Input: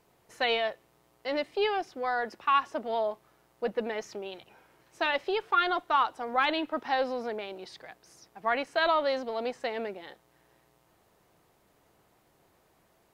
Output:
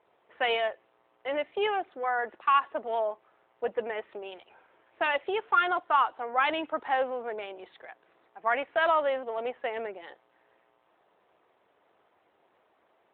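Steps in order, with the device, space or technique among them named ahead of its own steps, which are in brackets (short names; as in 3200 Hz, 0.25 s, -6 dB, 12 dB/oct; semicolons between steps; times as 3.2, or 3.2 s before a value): telephone (BPF 390–3400 Hz; gain +2 dB; AMR-NB 12.2 kbps 8000 Hz)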